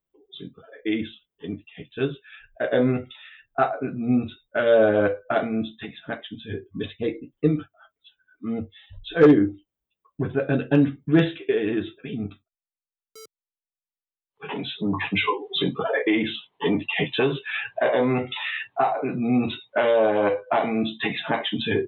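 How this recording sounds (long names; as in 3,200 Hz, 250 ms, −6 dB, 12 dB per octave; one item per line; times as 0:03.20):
background noise floor −95 dBFS
spectral slope −4.5 dB per octave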